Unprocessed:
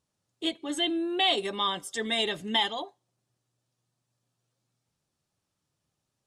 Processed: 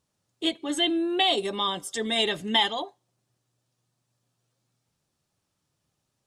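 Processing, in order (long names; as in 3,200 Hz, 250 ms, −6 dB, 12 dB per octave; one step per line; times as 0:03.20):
0:01.22–0:02.16: dynamic equaliser 1,800 Hz, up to −6 dB, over −40 dBFS, Q 0.91
level +3.5 dB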